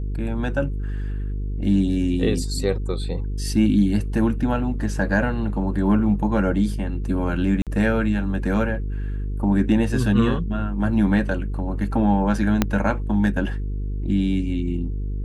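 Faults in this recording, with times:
buzz 50 Hz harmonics 9 -26 dBFS
7.62–7.67 gap 47 ms
12.62 pop -4 dBFS

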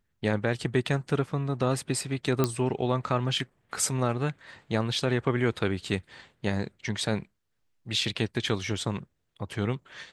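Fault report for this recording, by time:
2.44 pop -10 dBFS

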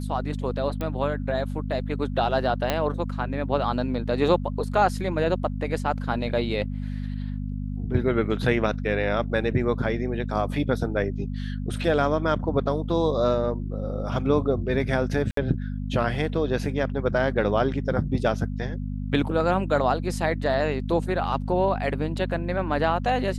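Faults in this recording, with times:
hum 50 Hz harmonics 5 -30 dBFS
0.81 pop -17 dBFS
2.7 pop -8 dBFS
15.31–15.37 gap 63 ms

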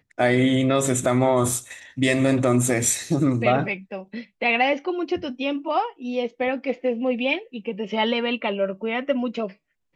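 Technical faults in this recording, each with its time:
1.52 gap 2.1 ms

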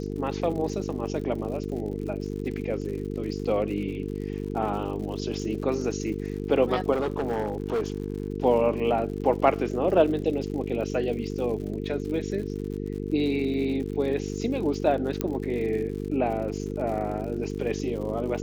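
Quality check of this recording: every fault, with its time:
buzz 50 Hz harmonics 9 -32 dBFS
crackle 96/s -36 dBFS
6.92–8.3 clipped -22.5 dBFS
15.21 pop -12 dBFS

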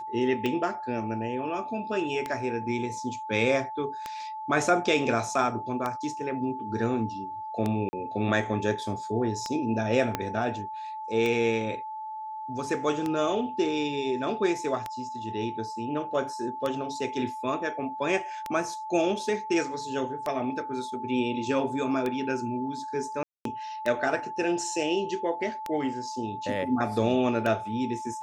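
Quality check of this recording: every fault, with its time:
tick 33 1/3 rpm -16 dBFS
tone 870 Hz -34 dBFS
7.89–7.93 gap 40 ms
10.15 pop -12 dBFS
23.23–23.45 gap 0.223 s

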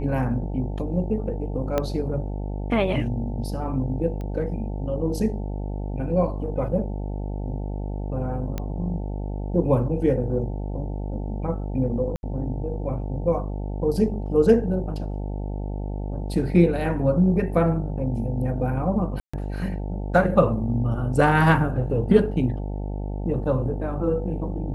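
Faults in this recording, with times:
buzz 50 Hz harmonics 18 -29 dBFS
1.78 pop -10 dBFS
4.21 pop -23 dBFS
8.58 pop -15 dBFS
12.16–12.23 gap 71 ms
19.2–19.34 gap 0.135 s

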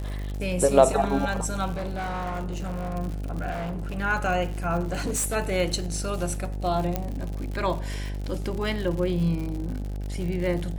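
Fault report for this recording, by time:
buzz 50 Hz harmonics 17 -31 dBFS
crackle 110/s -32 dBFS
1.72–2.96 clipped -27 dBFS
3.5–3.98 clipped -28 dBFS
4.8–5.36 clipped -23 dBFS
6.96 pop -12 dBFS

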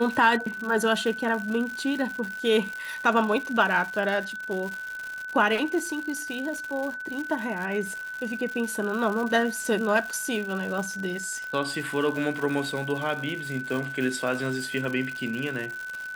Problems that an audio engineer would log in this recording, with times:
crackle 170/s -31 dBFS
tone 1500 Hz -33 dBFS

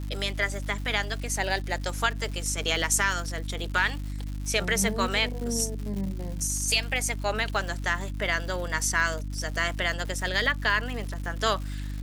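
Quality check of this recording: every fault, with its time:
crackle 220/s -35 dBFS
hum 50 Hz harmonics 6 -33 dBFS

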